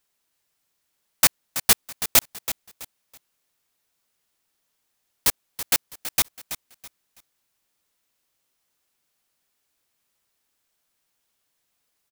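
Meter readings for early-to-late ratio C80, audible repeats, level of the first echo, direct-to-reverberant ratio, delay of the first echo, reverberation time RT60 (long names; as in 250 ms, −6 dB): no reverb audible, 3, −12.0 dB, no reverb audible, 328 ms, no reverb audible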